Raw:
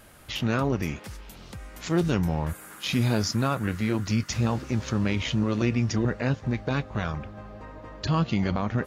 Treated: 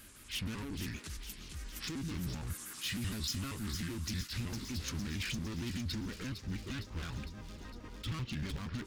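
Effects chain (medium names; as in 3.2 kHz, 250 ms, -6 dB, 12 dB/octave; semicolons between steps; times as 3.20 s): pitch shift switched off and on -4.5 st, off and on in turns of 78 ms; resonant low shelf 200 Hz -6.5 dB, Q 1.5; compression 3:1, threshold -28 dBFS, peak gain reduction 6.5 dB; overload inside the chain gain 33.5 dB; amplifier tone stack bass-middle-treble 6-0-2; feedback echo behind a high-pass 457 ms, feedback 65%, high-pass 4 kHz, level -6 dB; attacks held to a fixed rise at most 230 dB/s; trim +16 dB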